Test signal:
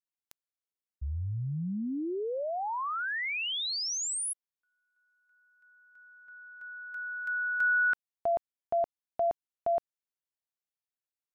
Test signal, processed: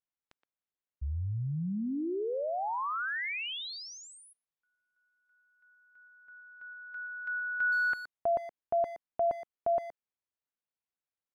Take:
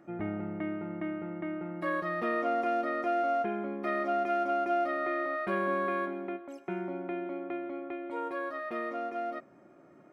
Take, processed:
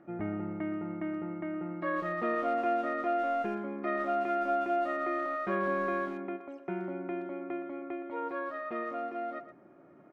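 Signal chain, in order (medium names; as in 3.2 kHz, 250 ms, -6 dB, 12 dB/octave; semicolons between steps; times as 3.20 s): Bessel low-pass 2.4 kHz, order 2; speakerphone echo 120 ms, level -11 dB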